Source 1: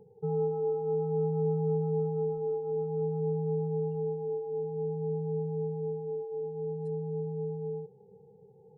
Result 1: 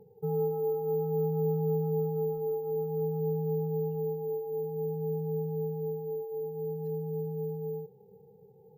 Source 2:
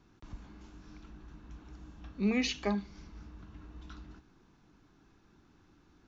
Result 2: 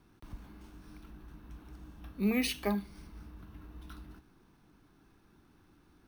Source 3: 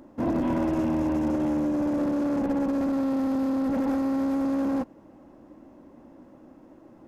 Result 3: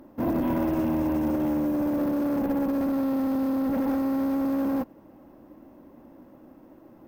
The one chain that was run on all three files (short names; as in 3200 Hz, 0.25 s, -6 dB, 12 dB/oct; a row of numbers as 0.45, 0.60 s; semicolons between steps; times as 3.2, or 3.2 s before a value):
careless resampling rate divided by 3×, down filtered, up hold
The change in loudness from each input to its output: 0.0, 0.0, 0.0 LU